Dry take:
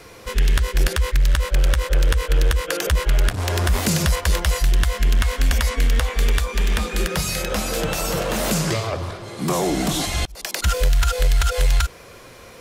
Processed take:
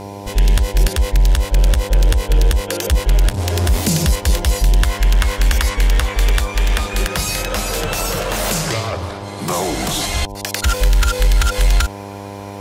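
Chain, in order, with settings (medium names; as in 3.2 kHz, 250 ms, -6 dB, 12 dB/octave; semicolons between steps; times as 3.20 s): peaking EQ 1.3 kHz -7.5 dB 1.8 oct, from 4.83 s 240 Hz; mains buzz 100 Hz, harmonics 10, -35 dBFS -2 dB/octave; trim +4 dB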